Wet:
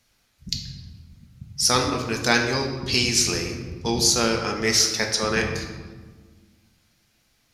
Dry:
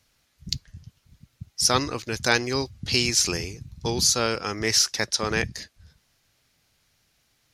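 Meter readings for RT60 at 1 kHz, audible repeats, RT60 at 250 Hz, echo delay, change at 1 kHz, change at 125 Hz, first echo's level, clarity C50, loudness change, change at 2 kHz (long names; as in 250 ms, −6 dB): 1.3 s, no echo audible, 2.2 s, no echo audible, +2.5 dB, +2.5 dB, no echo audible, 5.5 dB, +2.0 dB, +2.5 dB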